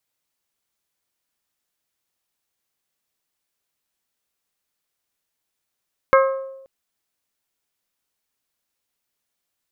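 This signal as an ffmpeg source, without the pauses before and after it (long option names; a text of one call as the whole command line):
ffmpeg -f lavfi -i "aevalsrc='0.316*pow(10,-3*t/0.94)*sin(2*PI*536*t)+0.224*pow(10,-3*t/0.579)*sin(2*PI*1072*t)+0.158*pow(10,-3*t/0.509)*sin(2*PI*1286.4*t)+0.112*pow(10,-3*t/0.436)*sin(2*PI*1608*t)+0.0794*pow(10,-3*t/0.356)*sin(2*PI*2144*t)':duration=0.53:sample_rate=44100" out.wav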